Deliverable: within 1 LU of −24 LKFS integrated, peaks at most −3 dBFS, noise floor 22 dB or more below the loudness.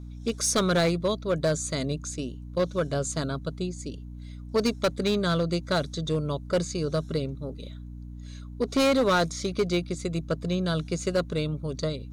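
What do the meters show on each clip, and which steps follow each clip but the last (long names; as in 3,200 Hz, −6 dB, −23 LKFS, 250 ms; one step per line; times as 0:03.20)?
share of clipped samples 1.5%; peaks flattened at −18.0 dBFS; mains hum 60 Hz; hum harmonics up to 300 Hz; level of the hum −38 dBFS; integrated loudness −27.5 LKFS; sample peak −18.0 dBFS; target loudness −24.0 LKFS
→ clipped peaks rebuilt −18 dBFS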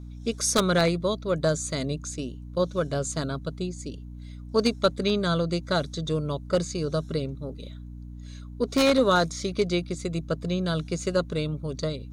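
share of clipped samples 0.0%; mains hum 60 Hz; hum harmonics up to 300 Hz; level of the hum −37 dBFS
→ hum removal 60 Hz, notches 5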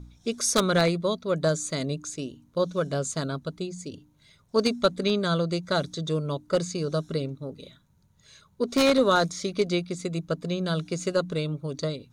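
mains hum none found; integrated loudness −27.0 LKFS; sample peak −8.5 dBFS; target loudness −24.0 LKFS
→ level +3 dB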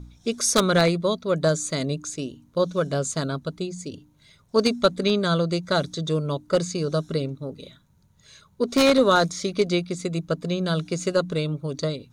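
integrated loudness −24.0 LKFS; sample peak −5.5 dBFS; background noise floor −60 dBFS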